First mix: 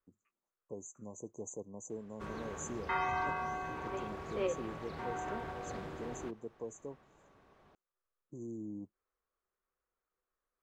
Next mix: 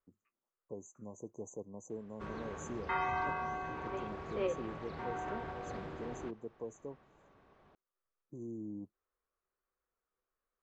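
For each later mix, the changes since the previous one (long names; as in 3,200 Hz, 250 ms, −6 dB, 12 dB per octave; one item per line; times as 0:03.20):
master: add high-frequency loss of the air 94 metres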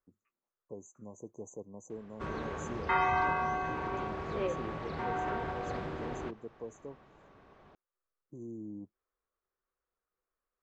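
background +6.0 dB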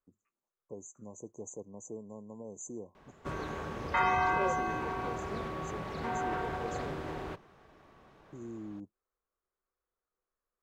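second voice: add high-shelf EQ 2,900 Hz −11 dB
background: entry +1.05 s
master: remove high-frequency loss of the air 94 metres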